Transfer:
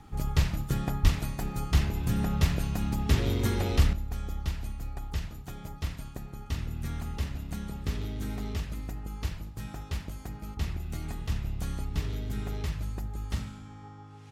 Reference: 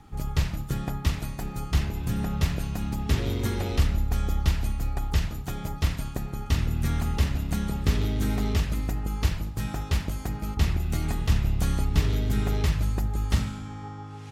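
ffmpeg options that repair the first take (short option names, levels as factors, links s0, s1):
-filter_complex "[0:a]asplit=3[s0][s1][s2];[s0]afade=t=out:st=1.02:d=0.02[s3];[s1]highpass=f=140:w=0.5412,highpass=f=140:w=1.3066,afade=t=in:st=1.02:d=0.02,afade=t=out:st=1.14:d=0.02[s4];[s2]afade=t=in:st=1.14:d=0.02[s5];[s3][s4][s5]amix=inputs=3:normalize=0,asetnsamples=n=441:p=0,asendcmd='3.93 volume volume 8.5dB',volume=1"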